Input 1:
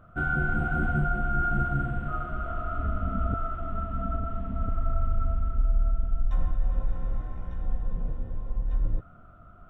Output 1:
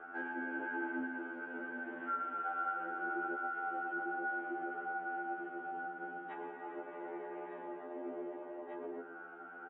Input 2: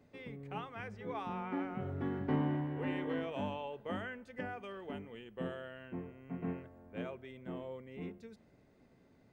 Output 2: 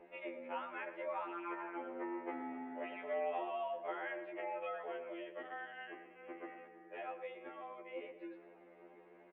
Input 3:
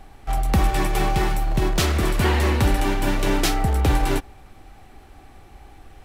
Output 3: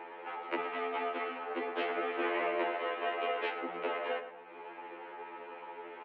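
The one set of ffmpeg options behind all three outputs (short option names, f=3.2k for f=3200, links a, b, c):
-filter_complex "[0:a]highpass=f=220:t=q:w=0.5412,highpass=f=220:t=q:w=1.307,lowpass=f=2.7k:t=q:w=0.5176,lowpass=f=2.7k:t=q:w=0.7071,lowpass=f=2.7k:t=q:w=1.932,afreqshift=110,acompressor=threshold=-52dB:ratio=2,aeval=exprs='val(0)+0.000126*(sin(2*PI*60*n/s)+sin(2*PI*2*60*n/s)/2+sin(2*PI*3*60*n/s)/3+sin(2*PI*4*60*n/s)/4+sin(2*PI*5*60*n/s)/5)':c=same,asplit=2[a][b];[b]adelay=116,lowpass=f=2.2k:p=1,volume=-10dB,asplit=2[c][d];[d]adelay=116,lowpass=f=2.2k:p=1,volume=0.42,asplit=2[e][f];[f]adelay=116,lowpass=f=2.2k:p=1,volume=0.42,asplit=2[g][h];[h]adelay=116,lowpass=f=2.2k:p=1,volume=0.42[i];[a][c][e][g][i]amix=inputs=5:normalize=0,afftfilt=real='re*2*eq(mod(b,4),0)':imag='im*2*eq(mod(b,4),0)':win_size=2048:overlap=0.75,volume=9.5dB"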